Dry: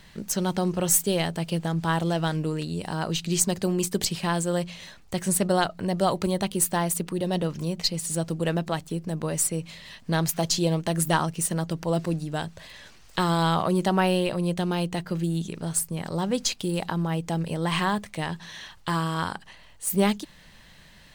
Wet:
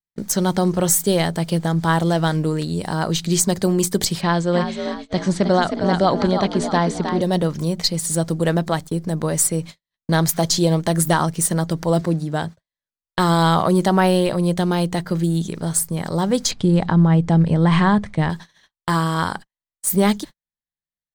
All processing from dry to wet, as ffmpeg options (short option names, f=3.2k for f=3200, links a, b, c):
-filter_complex "[0:a]asettb=1/sr,asplit=3[a][b][c];[a]atrim=end=4.214[d];[b]atrim=start=4.21:end=7.22,asetpts=PTS-STARTPTS,afade=t=in:d=0.004:c=qsin,afade=t=out:st=3.006:d=0.004:c=qsin,lowpass=f=5.4k:w=0.5412,lowpass=f=5.4k:w=1.3066,asplit=6[e][f][g][h][i][j];[f]adelay=313,afreqshift=54,volume=-7.5dB[k];[g]adelay=626,afreqshift=108,volume=-14.8dB[l];[h]adelay=939,afreqshift=162,volume=-22.2dB[m];[i]adelay=1252,afreqshift=216,volume=-29.5dB[n];[j]adelay=1565,afreqshift=270,volume=-36.8dB[o];[e][k][l][m][n][o]amix=inputs=6:normalize=0,atrim=end_sample=132741[p];[c]atrim=start=7.216[q];[d][p]acrossfade=d=0.004:c1=hsin:c2=qsin[r];[r][q]acrossfade=d=0.004:c1=qsin:c2=hsin,asettb=1/sr,asplit=3[s][t][u];[s]atrim=end=12.014[v];[t]atrim=start=12.01:end=12.59,asetpts=PTS-STARTPTS,afade=t=in:d=0.004:c=qsin,afade=t=out:st=0.576:d=0.004:c=qsin,highpass=f=59:w=0.5412,highpass=f=59:w=1.3066,highshelf=f=3.9k:g=-6[w];[u]atrim=start=12.586[x];[v][w]acrossfade=d=0.004:c1=hsin:c2=qsin[y];[y][x]acrossfade=d=0.004:c1=qsin:c2=hsin,asettb=1/sr,asplit=3[z][aa][ab];[z]atrim=end=16.514[ac];[aa]atrim=start=16.51:end=18.3,asetpts=PTS-STARTPTS,afade=t=in:d=0.004:c=qsin,afade=t=out:st=1.786:d=0.004:c=qsin,lowpass=f=8.9k:w=0.5412,lowpass=f=8.9k:w=1.3066,bass=f=250:g=8,treble=f=4k:g=-10[ad];[ab]atrim=start=18.296[ae];[ac][ad]acrossfade=d=0.004:c1=hsin:c2=qsin[af];[af][ae]acrossfade=d=0.004:c1=qsin:c2=hsin,equalizer=f=2.7k:t=o:w=0.28:g=-9,agate=range=-56dB:threshold=-38dB:ratio=16:detection=peak,alimiter=level_in=12dB:limit=-1dB:release=50:level=0:latency=1,volume=-5dB"